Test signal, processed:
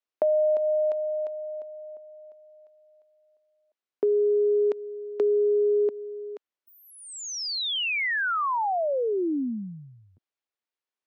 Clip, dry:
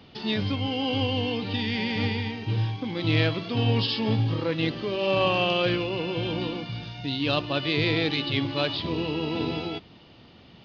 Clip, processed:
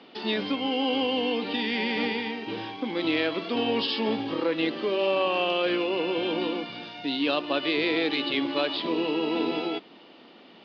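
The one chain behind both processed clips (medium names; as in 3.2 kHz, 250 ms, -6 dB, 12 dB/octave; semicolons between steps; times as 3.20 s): high-pass 250 Hz 24 dB/octave; compression, threshold -24 dBFS; distance through air 140 m; trim +4 dB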